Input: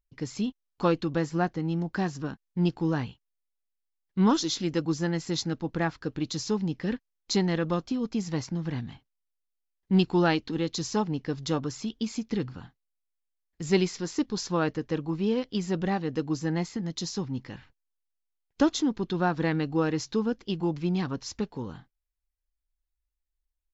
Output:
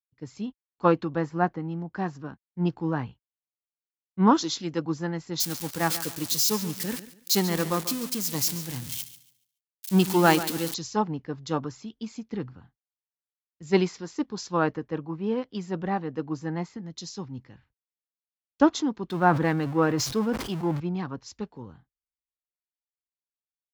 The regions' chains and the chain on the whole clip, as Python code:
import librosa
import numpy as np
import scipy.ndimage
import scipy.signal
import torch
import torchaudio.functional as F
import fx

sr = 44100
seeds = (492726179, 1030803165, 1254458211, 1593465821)

y = fx.chain(x, sr, fx.crossing_spikes(level_db=-20.0),
    fx.echo_feedback(ms=142, feedback_pct=40, wet_db=-12.0), at=(5.4, 10.74))
y = fx.chain(y, sr, fx.zero_step(step_db=-35.5),
    fx.sustainer(db_per_s=56.0), at=(19.1, 20.8))
y = scipy.signal.sosfilt(scipy.signal.butter(2, 48.0, 'highpass', fs=sr, output='sos'), y)
y = fx.dynamic_eq(y, sr, hz=990.0, q=1.2, threshold_db=-42.0, ratio=4.0, max_db=5)
y = fx.band_widen(y, sr, depth_pct=70)
y = y * 10.0 ** (-1.5 / 20.0)